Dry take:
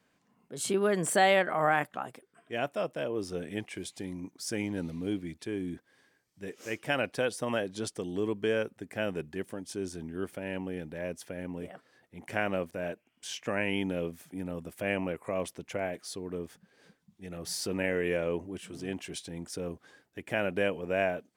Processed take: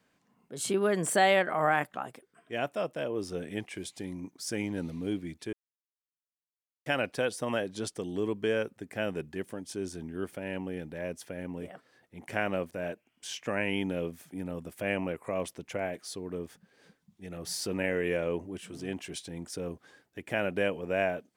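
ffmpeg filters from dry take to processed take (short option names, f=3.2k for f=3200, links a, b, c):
-filter_complex "[0:a]asplit=3[a][b][c];[a]atrim=end=5.53,asetpts=PTS-STARTPTS,afade=t=out:st=5.526:d=0.004:c=hsin[d];[b]atrim=start=5.53:end=6.86,asetpts=PTS-STARTPTS,volume=0[e];[c]atrim=start=6.86,asetpts=PTS-STARTPTS,afade=t=in:d=0.004:c=hsin[f];[d][e][f]concat=n=3:v=0:a=1"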